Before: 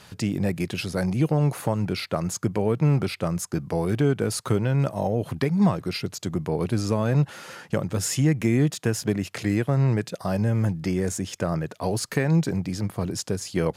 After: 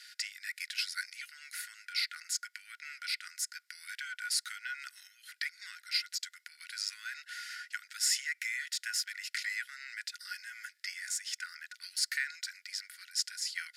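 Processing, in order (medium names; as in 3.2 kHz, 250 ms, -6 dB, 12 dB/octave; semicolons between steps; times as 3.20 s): rippled Chebyshev high-pass 1.4 kHz, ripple 9 dB; peaking EQ 6.3 kHz -6.5 dB 0.24 oct; trim +4 dB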